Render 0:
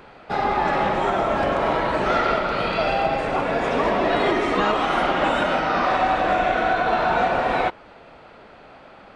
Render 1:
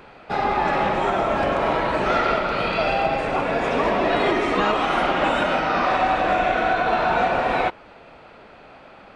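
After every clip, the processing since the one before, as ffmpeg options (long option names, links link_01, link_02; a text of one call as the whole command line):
ffmpeg -i in.wav -af "equalizer=frequency=2500:width=6.9:gain=3.5" out.wav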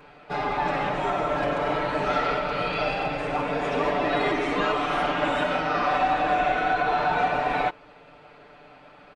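ffmpeg -i in.wav -af "aecho=1:1:6.8:0.89,volume=-6.5dB" out.wav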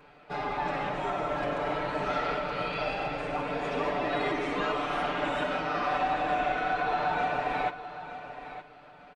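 ffmpeg -i in.wav -af "aecho=1:1:915|1830|2745:0.237|0.0498|0.0105,volume=-5.5dB" out.wav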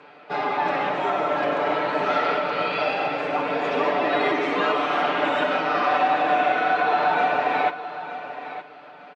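ffmpeg -i in.wav -af "highpass=240,lowpass=5100,volume=8dB" out.wav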